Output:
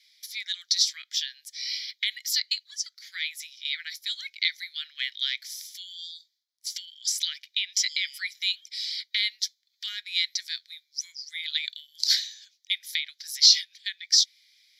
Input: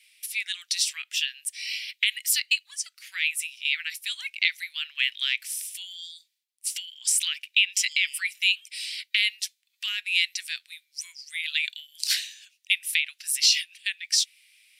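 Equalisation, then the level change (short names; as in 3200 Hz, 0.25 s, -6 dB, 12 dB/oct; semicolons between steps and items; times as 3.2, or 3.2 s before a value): band-pass 4000 Hz, Q 0.73; high shelf 3600 Hz +5.5 dB; fixed phaser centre 2700 Hz, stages 6; +1.5 dB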